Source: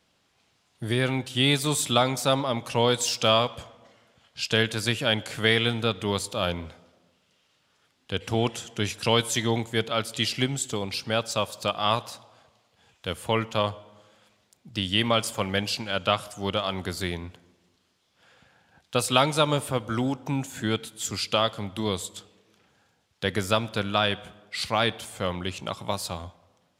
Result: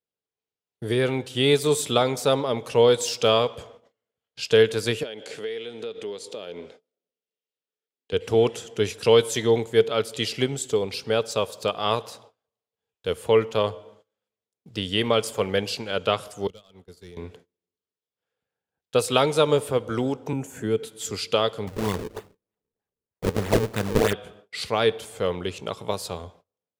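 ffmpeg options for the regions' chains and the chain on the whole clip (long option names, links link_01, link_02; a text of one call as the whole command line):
ffmpeg -i in.wav -filter_complex "[0:a]asettb=1/sr,asplit=3[link_01][link_02][link_03];[link_01]atrim=end=5.034[link_04];[link_02]atrim=start=5.03:end=8.13,asetpts=PTS-STARTPTS,afade=type=in:duration=0.004:curve=qsin,afade=type=out:start_time=3.096:duration=0.004:curve=qsin,acompressor=threshold=-30dB:ratio=12:attack=3.2:release=140:knee=1:detection=peak,highpass=250,lowpass=8000,equalizer=frequency=1100:width=1.3:gain=-6.5[link_05];[link_03]atrim=start=8.126[link_06];[link_04][link_05]acrossfade=duration=0.004:curve1=hsin:curve2=qsin[link_07];[link_07][link_06]acrossfade=duration=0.004:curve1=qsin:curve2=hsin,asettb=1/sr,asplit=3[link_08][link_09][link_10];[link_08]atrim=end=16.474[link_11];[link_09]atrim=start=16.47:end=17.17,asetpts=PTS-STARTPTS,afade=type=in:duration=0.004:curve=qsin,afade=type=out:start_time=0.696:duration=0.004:curve=qsin,asoftclip=type=hard:threshold=-22dB,acrossover=split=260|3000[link_12][link_13][link_14];[link_13]acompressor=threshold=-36dB:ratio=6:attack=3.2:release=140:knee=2.83:detection=peak[link_15];[link_12][link_15][link_14]amix=inputs=3:normalize=0,agate=range=-33dB:threshold=-24dB:ratio=3:release=100:detection=peak[link_16];[link_10]atrim=start=17.166[link_17];[link_11][link_16]acrossfade=duration=0.004:curve1=hsin:curve2=qsin[link_18];[link_18][link_17]acrossfade=duration=0.004:curve1=qsin:curve2=hsin,asettb=1/sr,asplit=3[link_19][link_20][link_21];[link_19]atrim=end=20.334[link_22];[link_20]atrim=start=20.33:end=20.83,asetpts=PTS-STARTPTS,afade=type=in:duration=0.004:curve=qsin,afade=type=out:start_time=0.496:duration=0.004:curve=qsin,equalizer=frequency=3800:width=2.5:gain=-14,bandreject=frequency=5000:width=15,acrossover=split=390|3000[link_23][link_24][link_25];[link_24]acompressor=threshold=-41dB:ratio=2:attack=3.2:release=140:knee=2.83:detection=peak[link_26];[link_23][link_26][link_25]amix=inputs=3:normalize=0[link_27];[link_21]atrim=start=20.826[link_28];[link_22][link_27]acrossfade=duration=0.004:curve1=hsin:curve2=qsin[link_29];[link_29][link_28]acrossfade=duration=0.004:curve1=qsin:curve2=hsin,asettb=1/sr,asplit=3[link_30][link_31][link_32];[link_30]atrim=end=21.674[link_33];[link_31]atrim=start=21.67:end=24.13,asetpts=PTS-STARTPTS,afade=type=in:duration=0.004:curve=qsin,afade=type=out:start_time=2.456:duration=0.004:curve=qsin,aecho=1:1:1.1:0.86,atrim=end_sample=108486,acrusher=samples=37:mix=1:aa=0.000001:lfo=1:lforange=59.2:lforate=3.2[link_34];[link_32]atrim=start=24.126[link_35];[link_33][link_34]acrossfade=duration=0.004:curve1=hsin:curve2=qsin[link_36];[link_36][link_35]acrossfade=duration=0.004:curve1=qsin:curve2=hsin,agate=range=-28dB:threshold=-51dB:ratio=16:detection=peak,equalizer=frequency=440:width=3.4:gain=14,volume=-1.5dB" out.wav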